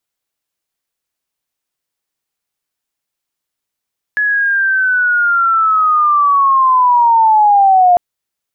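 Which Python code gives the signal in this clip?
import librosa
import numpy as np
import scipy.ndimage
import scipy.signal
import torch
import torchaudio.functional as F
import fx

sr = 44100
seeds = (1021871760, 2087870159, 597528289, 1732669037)

y = fx.chirp(sr, length_s=3.8, from_hz=1700.0, to_hz=700.0, law='linear', from_db=-11.0, to_db=-5.0)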